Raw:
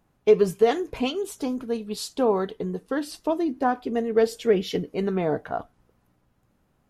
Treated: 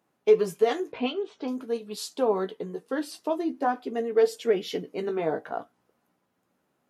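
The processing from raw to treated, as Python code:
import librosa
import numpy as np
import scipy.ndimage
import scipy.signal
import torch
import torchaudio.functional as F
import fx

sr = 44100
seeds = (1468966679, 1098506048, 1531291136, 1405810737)

y = scipy.signal.sosfilt(scipy.signal.butter(2, 240.0, 'highpass', fs=sr, output='sos'), x)
y = fx.chorus_voices(y, sr, voices=2, hz=0.47, base_ms=15, depth_ms=4.0, mix_pct=30)
y = fx.lowpass(y, sr, hz=3900.0, slope=24, at=(0.92, 1.48))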